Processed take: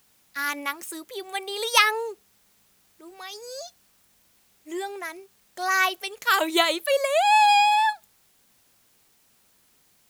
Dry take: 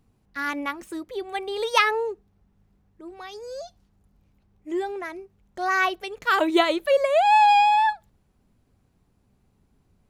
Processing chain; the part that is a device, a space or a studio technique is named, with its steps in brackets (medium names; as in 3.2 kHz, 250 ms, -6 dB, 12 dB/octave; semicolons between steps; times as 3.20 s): turntable without a phono preamp (RIAA curve recording; white noise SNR 37 dB); trim -1 dB